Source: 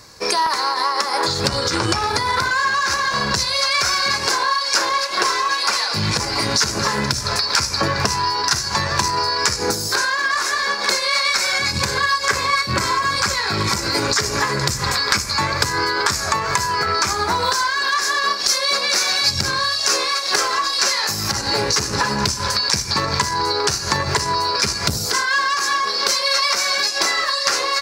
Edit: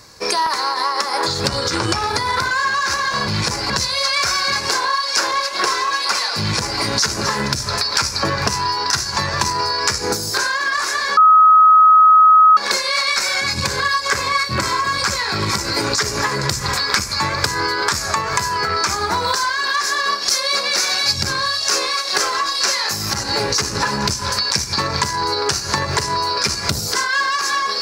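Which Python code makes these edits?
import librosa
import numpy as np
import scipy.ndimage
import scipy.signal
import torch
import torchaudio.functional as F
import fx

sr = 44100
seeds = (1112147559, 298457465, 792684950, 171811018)

y = fx.edit(x, sr, fx.duplicate(start_s=5.97, length_s=0.42, to_s=3.28),
    fx.insert_tone(at_s=10.75, length_s=1.4, hz=1270.0, db=-6.0), tone=tone)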